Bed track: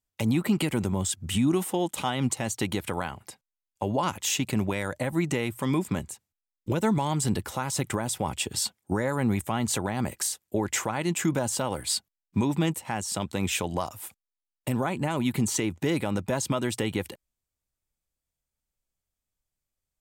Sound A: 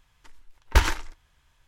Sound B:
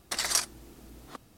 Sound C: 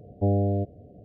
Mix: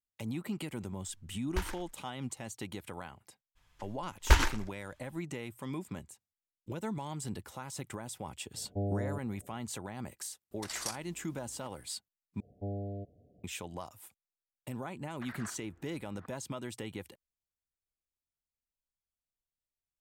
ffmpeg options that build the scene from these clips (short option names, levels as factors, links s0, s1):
-filter_complex "[1:a]asplit=2[s0][s1];[3:a]asplit=2[s2][s3];[2:a]asplit=2[s4][s5];[0:a]volume=0.224[s6];[s5]lowpass=f=1600:t=q:w=3[s7];[s6]asplit=2[s8][s9];[s8]atrim=end=12.404[s10];[s3]atrim=end=1.04,asetpts=PTS-STARTPTS,volume=0.178[s11];[s9]atrim=start=13.436[s12];[s0]atrim=end=1.67,asetpts=PTS-STARTPTS,volume=0.158,afade=t=in:d=0.004:c=hsin,afade=t=out:st=1.666:d=0.004:c=hsin,adelay=810[s13];[s1]atrim=end=1.67,asetpts=PTS-STARTPTS,volume=0.668,afade=t=in:d=0.02,afade=t=out:st=1.65:d=0.02,adelay=3550[s14];[s2]atrim=end=1.04,asetpts=PTS-STARTPTS,volume=0.282,afade=t=in:d=0.004:c=hsin,afade=t=out:st=1.036:d=0.004:c=hsin,adelay=8540[s15];[s4]atrim=end=1.37,asetpts=PTS-STARTPTS,volume=0.251,afade=t=in:d=0.004:c=hsin,afade=t=out:st=1.366:d=0.004:c=hsin,adelay=10510[s16];[s7]atrim=end=1.37,asetpts=PTS-STARTPTS,volume=0.15,afade=t=in:d=0.004:c=hsin,afade=t=out:st=1.366:d=0.004:c=hsin,adelay=15100[s17];[s10][s11]acrossfade=d=0.004:c1=hsin:c2=hsin[s18];[s18][s12]acrossfade=d=0.004:c1=hsin:c2=hsin[s19];[s19][s13][s14][s15][s16][s17]amix=inputs=6:normalize=0"